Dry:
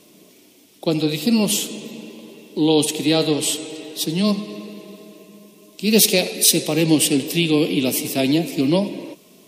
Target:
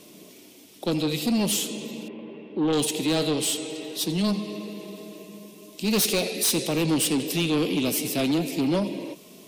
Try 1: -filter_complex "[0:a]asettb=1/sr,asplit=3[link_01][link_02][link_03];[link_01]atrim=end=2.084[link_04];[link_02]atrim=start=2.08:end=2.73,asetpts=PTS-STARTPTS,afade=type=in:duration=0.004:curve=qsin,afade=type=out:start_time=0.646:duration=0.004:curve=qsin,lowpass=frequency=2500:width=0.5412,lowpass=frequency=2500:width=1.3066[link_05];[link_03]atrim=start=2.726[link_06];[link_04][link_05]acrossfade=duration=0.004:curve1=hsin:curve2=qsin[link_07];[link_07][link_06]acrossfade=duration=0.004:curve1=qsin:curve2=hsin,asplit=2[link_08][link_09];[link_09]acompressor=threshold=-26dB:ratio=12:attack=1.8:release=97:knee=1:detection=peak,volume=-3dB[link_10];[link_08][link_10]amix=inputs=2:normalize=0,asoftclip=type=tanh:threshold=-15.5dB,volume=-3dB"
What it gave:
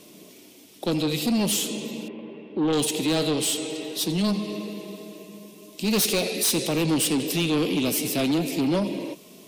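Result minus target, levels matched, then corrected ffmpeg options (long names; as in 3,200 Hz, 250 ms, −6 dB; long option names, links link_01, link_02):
downward compressor: peak gain reduction −10 dB
-filter_complex "[0:a]asettb=1/sr,asplit=3[link_01][link_02][link_03];[link_01]atrim=end=2.084[link_04];[link_02]atrim=start=2.08:end=2.73,asetpts=PTS-STARTPTS,afade=type=in:duration=0.004:curve=qsin,afade=type=out:start_time=0.646:duration=0.004:curve=qsin,lowpass=frequency=2500:width=0.5412,lowpass=frequency=2500:width=1.3066[link_05];[link_03]atrim=start=2.726[link_06];[link_04][link_05]acrossfade=duration=0.004:curve1=hsin:curve2=qsin[link_07];[link_07][link_06]acrossfade=duration=0.004:curve1=qsin:curve2=hsin,asplit=2[link_08][link_09];[link_09]acompressor=threshold=-37dB:ratio=12:attack=1.8:release=97:knee=1:detection=peak,volume=-3dB[link_10];[link_08][link_10]amix=inputs=2:normalize=0,asoftclip=type=tanh:threshold=-15.5dB,volume=-3dB"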